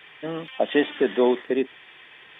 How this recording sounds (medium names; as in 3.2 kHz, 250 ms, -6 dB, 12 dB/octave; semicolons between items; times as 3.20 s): noise floor -49 dBFS; spectral tilt -3.0 dB/octave